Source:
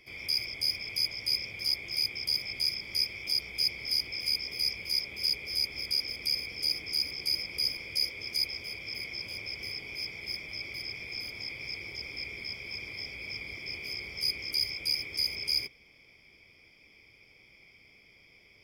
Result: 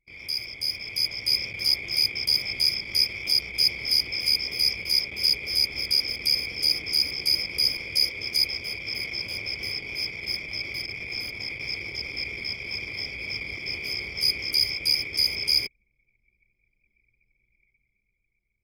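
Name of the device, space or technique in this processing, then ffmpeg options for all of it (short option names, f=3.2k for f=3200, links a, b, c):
voice memo with heavy noise removal: -filter_complex "[0:a]asettb=1/sr,asplit=3[a][b][c];[a]atrim=end=10.864[d];[b]atrim=start=10.86:end=11.6,asetpts=PTS-STARTPTS,afade=t=in:d=0.004:c=qsin,afade=t=out:st=0.736:d=0.004:c=qsin,adynamicequalizer=threshold=0.00447:dfrequency=4700:dqfactor=2:tfrequency=4700:tqfactor=2:attack=5:release=100:ratio=0.375:range=2:mode=cutabove:tftype=bell[e];[c]atrim=start=11.596[f];[d][e]acrossfade=d=0.004:c1=hsin:c2=qsin[g];[g][f]acrossfade=d=0.004:c1=qsin:c2=hsin,anlmdn=0.0398,dynaudnorm=f=160:g=13:m=7dB"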